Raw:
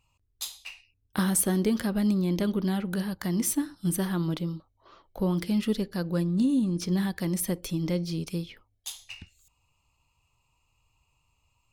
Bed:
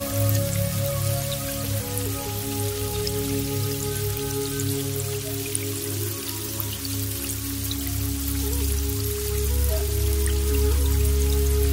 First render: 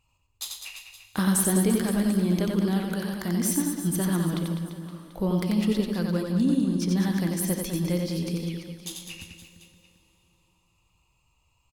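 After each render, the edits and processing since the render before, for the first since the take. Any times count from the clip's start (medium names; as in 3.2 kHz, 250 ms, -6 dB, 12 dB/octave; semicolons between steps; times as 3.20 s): on a send: reverse bouncing-ball echo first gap 90 ms, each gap 1.25×, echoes 5; on the sum: plate-style reverb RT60 3.9 s, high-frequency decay 0.95×, DRR 14.5 dB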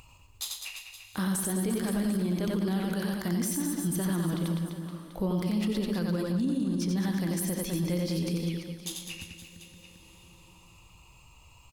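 upward compressor, threshold -42 dBFS; peak limiter -21.5 dBFS, peak gain reduction 10.5 dB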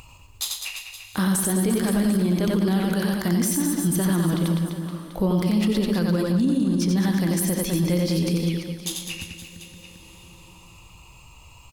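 trim +7.5 dB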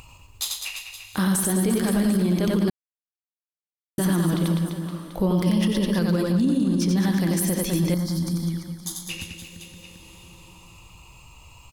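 2.70–3.98 s: mute; 5.46–5.99 s: rippled EQ curve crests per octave 1.2, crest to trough 8 dB; 7.94–9.09 s: static phaser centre 1.1 kHz, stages 4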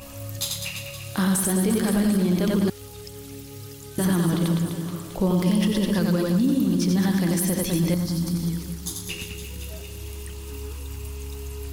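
add bed -13.5 dB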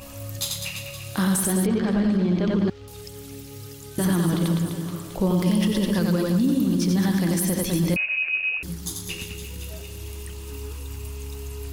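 1.66–2.88 s: distance through air 180 m; 7.96–8.63 s: frequency inversion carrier 2.7 kHz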